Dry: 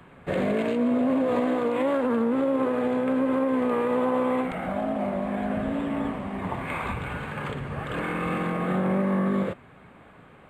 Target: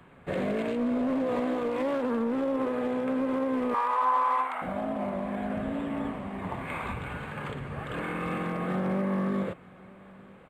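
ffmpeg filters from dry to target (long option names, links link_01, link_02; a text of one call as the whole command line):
ffmpeg -i in.wav -filter_complex "[0:a]asoftclip=type=hard:threshold=-19dB,asettb=1/sr,asplit=3[link_01][link_02][link_03];[link_01]atrim=end=3.744[link_04];[link_02]atrim=start=3.74:end=4.62,asetpts=PTS-STARTPTS,afade=type=in:duration=0.004:curve=qsin,afade=type=out:start_time=0.876:duration=0.004:curve=qsin,highpass=frequency=1000:width_type=q:width=4.9[link_05];[link_03]atrim=start=4.616[link_06];[link_04][link_05]acrossfade=duration=0.004:curve1=hsin:curve2=qsin[link_07];[link_07][link_06]acrossfade=duration=0.004:curve1=qsin:curve2=hsin,aecho=1:1:928:0.0668,volume=-4dB" out.wav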